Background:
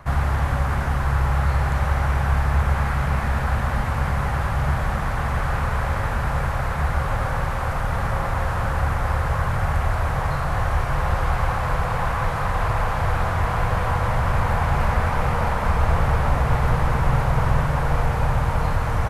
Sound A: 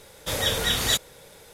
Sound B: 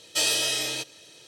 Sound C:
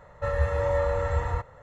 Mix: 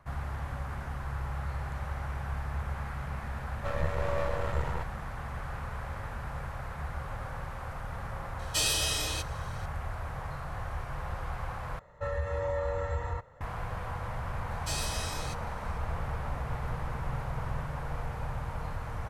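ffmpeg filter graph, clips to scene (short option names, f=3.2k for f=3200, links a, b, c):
-filter_complex "[3:a]asplit=2[a][b];[2:a]asplit=2[c][d];[0:a]volume=-15dB[e];[a]aeval=exprs='max(val(0),0)':c=same[f];[c]highshelf=f=8.4k:g=4[g];[b]alimiter=limit=-17.5dB:level=0:latency=1:release=82[h];[d]equalizer=f=3.1k:t=o:w=0.41:g=-6.5[i];[e]asplit=2[j][k];[j]atrim=end=11.794[l];[h]atrim=end=1.62,asetpts=PTS-STARTPTS,volume=-5.5dB[m];[k]atrim=start=13.406[n];[f]atrim=end=1.62,asetpts=PTS-STARTPTS,volume=-2.5dB,afade=t=in:d=0.004:c=hsin,afade=t=out:st=1.616:d=0.004:c=hsin,adelay=3420[o];[g]atrim=end=1.27,asetpts=PTS-STARTPTS,volume=-5.5dB,afade=t=in:d=0.004:c=hsin,afade=t=out:st=1.266:d=0.004:c=hsin,adelay=8390[p];[i]atrim=end=1.27,asetpts=PTS-STARTPTS,volume=-11dB,afade=t=in:d=0.004:c=hsin,afade=t=out:st=1.266:d=0.004:c=hsin,adelay=14510[q];[l][m]acrossfade=d=0.004:c1=hsin:c2=hsin[r];[r][n]acrossfade=d=0.004:c1=hsin:c2=hsin[s];[s][o][p][q]amix=inputs=4:normalize=0"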